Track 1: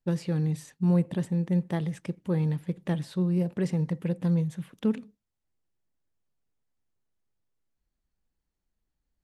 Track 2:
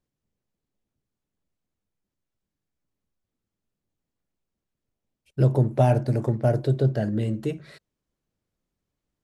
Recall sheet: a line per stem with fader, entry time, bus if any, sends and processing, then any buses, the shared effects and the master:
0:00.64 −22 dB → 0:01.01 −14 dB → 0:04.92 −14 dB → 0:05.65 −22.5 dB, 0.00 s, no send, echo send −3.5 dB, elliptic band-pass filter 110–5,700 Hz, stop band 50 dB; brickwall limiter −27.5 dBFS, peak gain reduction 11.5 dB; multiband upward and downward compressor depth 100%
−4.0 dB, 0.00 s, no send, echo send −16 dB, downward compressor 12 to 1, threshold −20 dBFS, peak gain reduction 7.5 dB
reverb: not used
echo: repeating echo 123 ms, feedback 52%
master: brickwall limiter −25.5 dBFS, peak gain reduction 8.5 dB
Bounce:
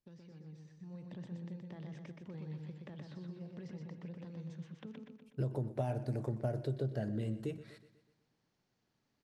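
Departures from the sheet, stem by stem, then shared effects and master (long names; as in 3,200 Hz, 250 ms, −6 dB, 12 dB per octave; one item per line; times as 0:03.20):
stem 2 −4.0 dB → −11.0 dB
master: missing brickwall limiter −25.5 dBFS, peak gain reduction 8.5 dB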